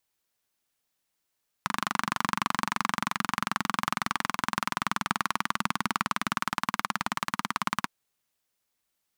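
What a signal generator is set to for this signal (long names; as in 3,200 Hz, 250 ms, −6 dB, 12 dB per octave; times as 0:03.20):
pulse-train model of a single-cylinder engine, changing speed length 6.24 s, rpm 2,900, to 2,100, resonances 210/1,100 Hz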